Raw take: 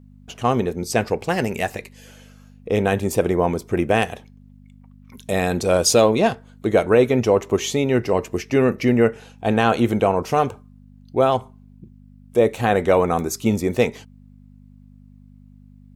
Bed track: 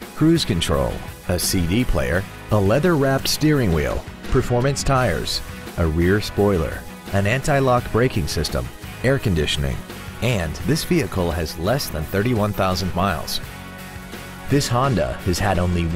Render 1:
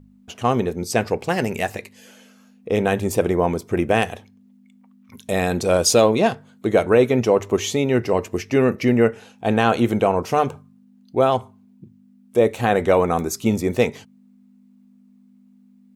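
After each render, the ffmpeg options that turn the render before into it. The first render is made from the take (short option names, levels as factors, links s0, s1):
-af "bandreject=f=50:t=h:w=4,bandreject=f=100:t=h:w=4,bandreject=f=150:t=h:w=4"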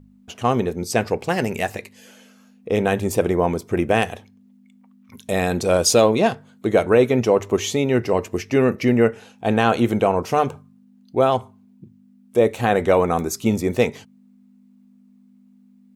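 -af anull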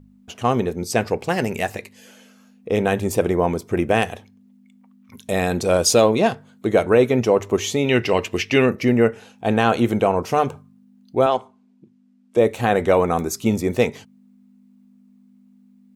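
-filter_complex "[0:a]asettb=1/sr,asplit=3[s0][s1][s2];[s0]atrim=end=7.844[s3];[s1]atrim=start=7.84:end=8.66,asetpts=PTS-STARTPTS,afade=t=in:d=0.004:c=qsin,afade=t=out:st=0.816:d=0.004:c=qsin,equalizer=f=3000:w=1:g=13.5[s4];[s2]atrim=start=8.656[s5];[s3][s4]acrossfade=d=0.004:c1=hsin:c2=qsin[s6];[s6][s5]acrossfade=d=0.004:c1=qsin:c2=hsin,asettb=1/sr,asplit=3[s7][s8][s9];[s7]atrim=end=11.264[s10];[s8]atrim=start=11.26:end=12.37,asetpts=PTS-STARTPTS,afade=t=in:d=0.004:c=qsin,afade=t=out:st=1.106:d=0.004:c=qsin,highpass=270,lowpass=7200[s11];[s9]atrim=start=12.366[s12];[s10][s11]acrossfade=d=0.004:c1=hsin:c2=qsin[s13];[s13][s12]acrossfade=d=0.004:c1=qsin:c2=hsin"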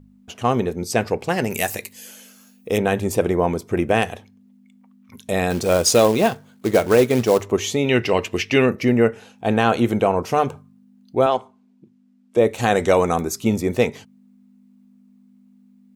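-filter_complex "[0:a]asettb=1/sr,asplit=3[s0][s1][s2];[s0]atrim=end=1.504[s3];[s1]atrim=start=1.5:end=2.78,asetpts=PTS-STARTPTS,afade=t=in:d=0.004:c=qsin,afade=t=out:st=1.276:d=0.004:c=qsin,aemphasis=mode=production:type=75fm[s4];[s2]atrim=start=2.776[s5];[s3][s4]acrossfade=d=0.004:c1=hsin:c2=qsin[s6];[s6][s5]acrossfade=d=0.004:c1=qsin:c2=hsin,asettb=1/sr,asplit=3[s7][s8][s9];[s7]atrim=end=5.504[s10];[s8]atrim=start=5.5:end=7.43,asetpts=PTS-STARTPTS,afade=t=in:d=0.004:c=qsin,afade=t=out:st=1.926:d=0.004:c=qsin,acrusher=bits=4:mode=log:mix=0:aa=0.000001[s11];[s9]atrim=start=7.426[s12];[s10][s11]acrossfade=d=0.004:c1=hsin:c2=qsin[s13];[s13][s12]acrossfade=d=0.004:c1=qsin:c2=hsin,asettb=1/sr,asplit=3[s14][s15][s16];[s14]atrim=end=12.584[s17];[s15]atrim=start=12.58:end=13.16,asetpts=PTS-STARTPTS,afade=t=in:d=0.004:c=qsin,afade=t=out:st=0.576:d=0.004:c=qsin,equalizer=f=6500:w=0.94:g=12.5[s18];[s16]atrim=start=13.156[s19];[s17][s18]acrossfade=d=0.004:c1=hsin:c2=qsin[s20];[s20][s19]acrossfade=d=0.004:c1=qsin:c2=hsin"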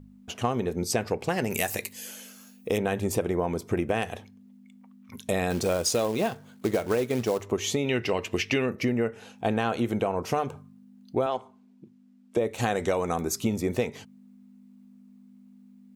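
-af "acompressor=threshold=0.0708:ratio=6"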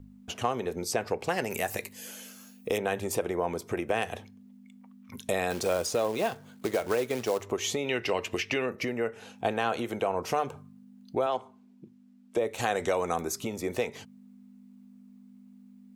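-filter_complex "[0:a]acrossover=split=380|1900[s0][s1][s2];[s0]acompressor=threshold=0.0126:ratio=5[s3];[s2]alimiter=limit=0.0841:level=0:latency=1:release=414[s4];[s3][s1][s4]amix=inputs=3:normalize=0"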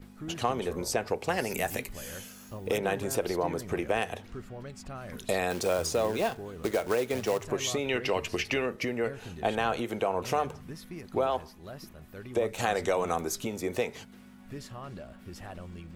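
-filter_complex "[1:a]volume=0.0631[s0];[0:a][s0]amix=inputs=2:normalize=0"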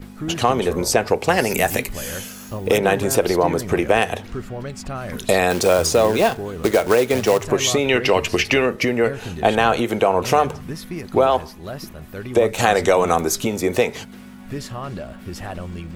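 -af "volume=3.98,alimiter=limit=0.794:level=0:latency=1"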